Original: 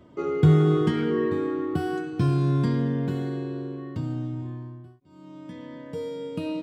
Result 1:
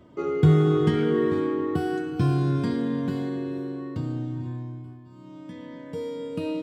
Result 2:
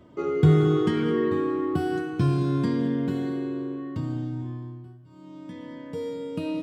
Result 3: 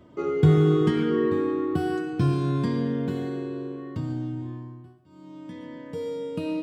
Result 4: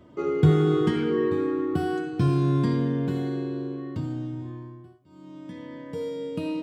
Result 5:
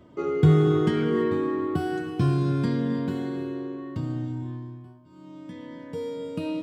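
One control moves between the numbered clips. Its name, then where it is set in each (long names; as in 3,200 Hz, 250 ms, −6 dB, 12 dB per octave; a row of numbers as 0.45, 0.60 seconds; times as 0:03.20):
reverb whose tail is shaped and stops, gate: 530, 240, 160, 100, 350 milliseconds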